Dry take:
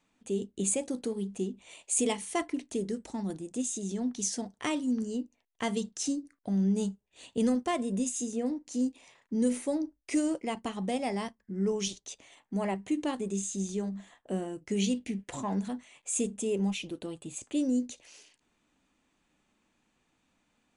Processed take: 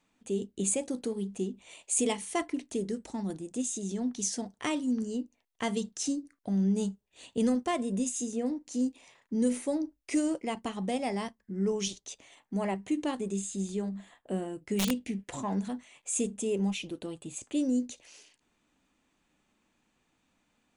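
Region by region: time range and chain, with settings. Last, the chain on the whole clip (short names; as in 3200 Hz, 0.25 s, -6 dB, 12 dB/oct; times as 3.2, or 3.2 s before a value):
13.34–14.91 bell 6000 Hz -10 dB 0.22 oct + wrapped overs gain 21 dB
whole clip: dry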